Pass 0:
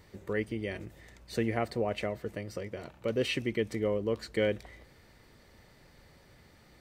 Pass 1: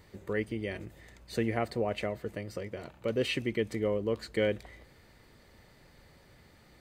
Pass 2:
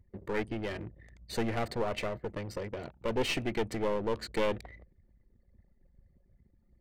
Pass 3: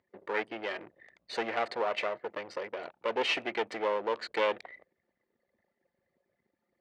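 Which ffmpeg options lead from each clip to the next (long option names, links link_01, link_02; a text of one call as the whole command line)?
ffmpeg -i in.wav -af "bandreject=frequency=5600:width=14" out.wav
ffmpeg -i in.wav -af "aeval=exprs='clip(val(0),-1,0.0133)':channel_layout=same,anlmdn=0.00631,volume=3dB" out.wav
ffmpeg -i in.wav -af "highpass=560,lowpass=3800,volume=5dB" out.wav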